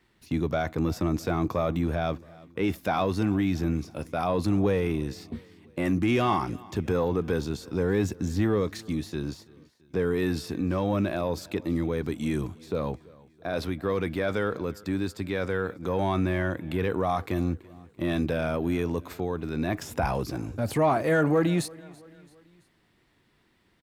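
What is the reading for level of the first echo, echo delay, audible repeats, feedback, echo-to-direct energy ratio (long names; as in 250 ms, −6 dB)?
−23.0 dB, 334 ms, 3, 51%, −22.0 dB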